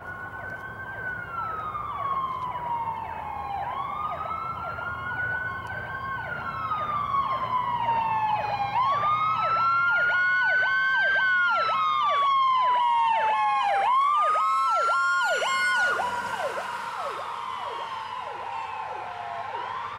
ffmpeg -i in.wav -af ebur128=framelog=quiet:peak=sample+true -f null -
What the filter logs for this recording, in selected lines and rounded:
Integrated loudness:
  I:         -25.3 LUFS
  Threshold: -35.5 LUFS
Loudness range:
  LRA:         9.4 LU
  Threshold: -44.9 LUFS
  LRA low:   -31.2 LUFS
  LRA high:  -21.8 LUFS
Sample peak:
  Peak:      -15.2 dBFS
True peak:
  Peak:      -15.2 dBFS